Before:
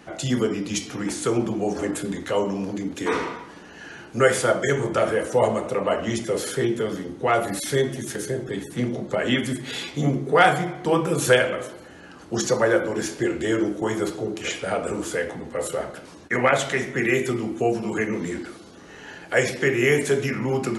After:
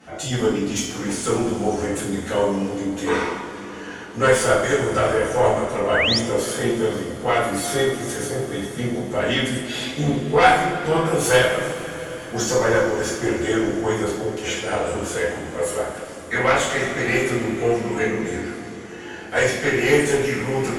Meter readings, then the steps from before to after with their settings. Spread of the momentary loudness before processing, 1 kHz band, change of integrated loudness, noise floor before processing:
11 LU, +3.5 dB, +2.5 dB, −44 dBFS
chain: tube saturation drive 12 dB, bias 0.5
notch filter 4,000 Hz, Q 27
coupled-rooms reverb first 0.45 s, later 5 s, from −18 dB, DRR −10 dB
sound drawn into the spectrogram rise, 0:05.94–0:06.19, 1,400–5,800 Hz −15 dBFS
level −5 dB

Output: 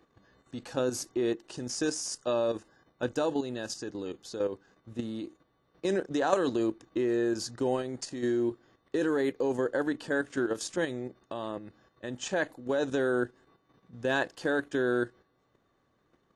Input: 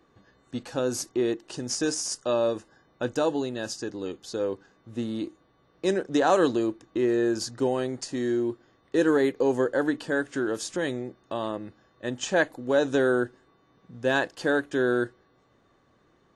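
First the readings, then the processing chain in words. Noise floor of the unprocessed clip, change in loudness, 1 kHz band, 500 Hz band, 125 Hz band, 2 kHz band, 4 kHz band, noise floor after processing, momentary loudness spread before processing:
−64 dBFS, −4.0 dB, −5.0 dB, −4.5 dB, −4.0 dB, −4.5 dB, −4.5 dB, −72 dBFS, 12 LU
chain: output level in coarse steps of 9 dB

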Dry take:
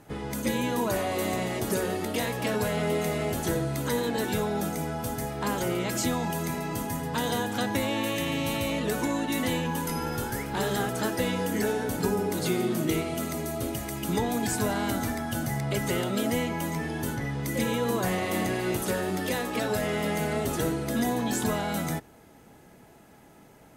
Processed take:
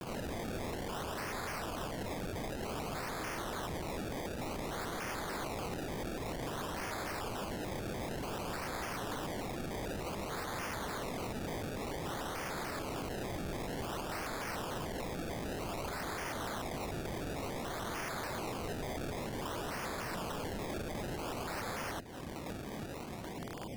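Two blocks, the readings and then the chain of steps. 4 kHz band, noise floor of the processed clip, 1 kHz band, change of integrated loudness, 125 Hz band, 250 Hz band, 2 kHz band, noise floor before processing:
−9.0 dB, −43 dBFS, −7.5 dB, −11.0 dB, −11.0 dB, −13.0 dB, −8.5 dB, −53 dBFS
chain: Butterworth low-pass 940 Hz 36 dB per octave
brickwall limiter −22.5 dBFS, peak gain reduction 8.5 dB
downward compressor 3 to 1, threshold −43 dBFS, peak gain reduction 12 dB
sample-and-hold swept by an LFO 25×, swing 100% 0.54 Hz
wrap-around overflow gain 46 dB
pitch modulation by a square or saw wave square 3.4 Hz, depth 250 cents
level +11.5 dB

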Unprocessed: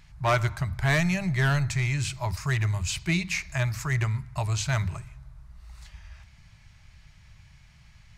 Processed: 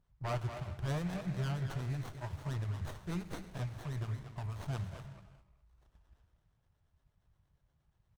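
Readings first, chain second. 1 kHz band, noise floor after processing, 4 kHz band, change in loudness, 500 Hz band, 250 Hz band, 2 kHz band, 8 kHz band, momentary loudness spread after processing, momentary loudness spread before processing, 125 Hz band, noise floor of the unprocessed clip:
−13.0 dB, −77 dBFS, −17.0 dB, −12.5 dB, −11.5 dB, −10.5 dB, −20.5 dB, −21.0 dB, 7 LU, 6 LU, −11.0 dB, −55 dBFS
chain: noise gate −41 dBFS, range −8 dB
two-band tremolo in antiphase 8.5 Hz, depth 70%, crossover 1,200 Hz
far-end echo of a speakerphone 230 ms, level −6 dB
reverb whose tail is shaped and stops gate 440 ms flat, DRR 11 dB
windowed peak hold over 17 samples
level −9 dB

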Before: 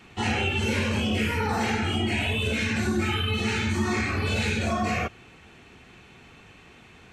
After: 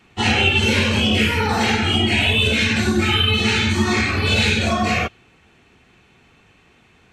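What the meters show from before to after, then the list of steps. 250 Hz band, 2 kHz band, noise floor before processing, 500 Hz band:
+6.5 dB, +9.0 dB, −51 dBFS, +6.5 dB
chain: dynamic equaliser 3,600 Hz, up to +7 dB, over −45 dBFS, Q 1.4
expander for the loud parts 1.5 to 1, over −44 dBFS
level +8 dB

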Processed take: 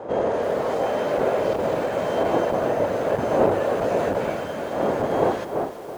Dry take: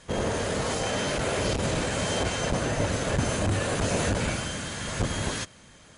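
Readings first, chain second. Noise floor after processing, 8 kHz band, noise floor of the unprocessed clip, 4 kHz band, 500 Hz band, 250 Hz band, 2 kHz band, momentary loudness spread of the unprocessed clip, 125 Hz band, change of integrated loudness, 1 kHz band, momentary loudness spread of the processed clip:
−33 dBFS, below −10 dB, −52 dBFS, −8.5 dB, +9.5 dB, +3.0 dB, −2.0 dB, 5 LU, −6.0 dB, +4.5 dB, +7.5 dB, 6 LU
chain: wind on the microphone 560 Hz −32 dBFS
resonant band-pass 590 Hz, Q 1.3
feedback echo at a low word length 330 ms, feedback 55%, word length 8 bits, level −12 dB
level +8.5 dB

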